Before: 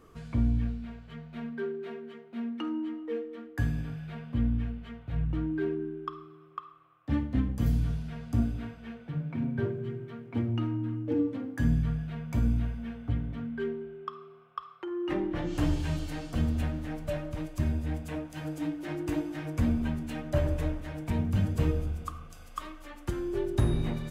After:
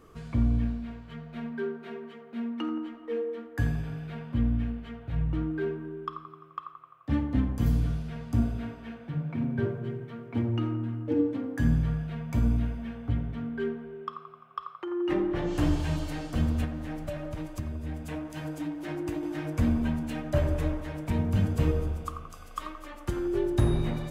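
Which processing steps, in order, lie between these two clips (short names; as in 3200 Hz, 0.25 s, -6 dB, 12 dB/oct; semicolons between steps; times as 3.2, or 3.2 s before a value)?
16.64–19.23 compressor 10:1, threshold -32 dBFS, peak gain reduction 10 dB; band-limited delay 86 ms, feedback 64%, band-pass 720 Hz, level -6 dB; gain +1.5 dB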